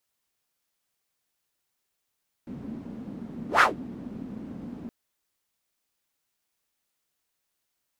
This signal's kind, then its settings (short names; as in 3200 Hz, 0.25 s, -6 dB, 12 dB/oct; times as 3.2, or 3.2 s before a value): whoosh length 2.42 s, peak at 1.14, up 0.13 s, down 0.15 s, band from 230 Hz, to 1500 Hz, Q 4.3, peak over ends 22 dB